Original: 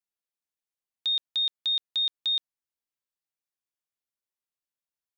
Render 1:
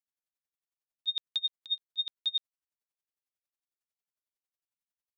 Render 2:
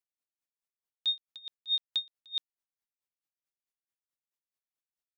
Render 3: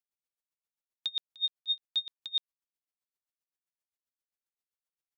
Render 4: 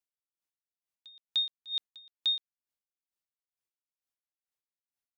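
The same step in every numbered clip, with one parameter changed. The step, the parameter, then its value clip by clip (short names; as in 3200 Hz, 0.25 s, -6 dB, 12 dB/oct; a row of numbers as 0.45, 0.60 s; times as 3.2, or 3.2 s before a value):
dB-linear tremolo, rate: 11, 4.6, 7.6, 2.2 Hz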